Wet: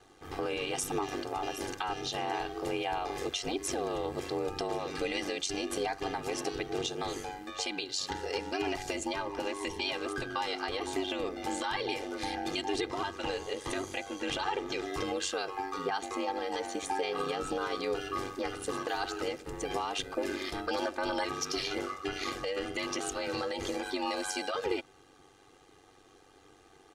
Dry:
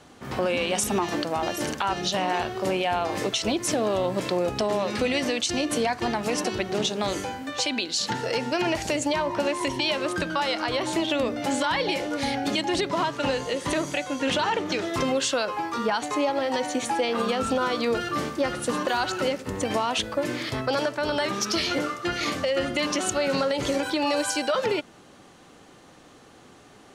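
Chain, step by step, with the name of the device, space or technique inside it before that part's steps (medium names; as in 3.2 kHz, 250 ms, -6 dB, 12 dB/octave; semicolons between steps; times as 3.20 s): 20.10–21.24 s: comb 3.3 ms, depth 74%; ring-modulated robot voice (ring modulator 48 Hz; comb 2.5 ms, depth 69%); trim -7 dB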